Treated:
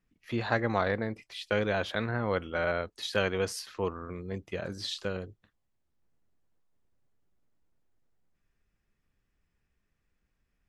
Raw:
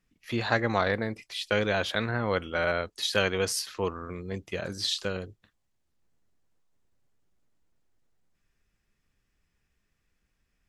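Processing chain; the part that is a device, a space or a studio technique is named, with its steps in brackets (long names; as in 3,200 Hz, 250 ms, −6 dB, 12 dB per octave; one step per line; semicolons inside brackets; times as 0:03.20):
behind a face mask (high-shelf EQ 2,800 Hz −8 dB)
level −1.5 dB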